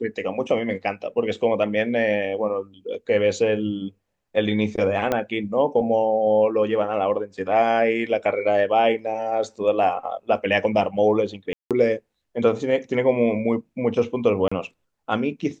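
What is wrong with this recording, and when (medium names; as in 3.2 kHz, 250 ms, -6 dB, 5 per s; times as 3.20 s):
5.12 s: pop -9 dBFS
11.53–11.71 s: dropout 177 ms
14.48–14.52 s: dropout 35 ms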